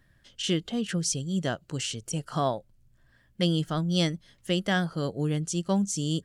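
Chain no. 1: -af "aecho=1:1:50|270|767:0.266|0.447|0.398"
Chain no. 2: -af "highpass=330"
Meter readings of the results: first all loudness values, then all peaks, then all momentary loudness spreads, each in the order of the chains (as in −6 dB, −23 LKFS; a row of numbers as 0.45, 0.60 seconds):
−28.0, −32.0 LKFS; −10.0, −13.5 dBFS; 7, 6 LU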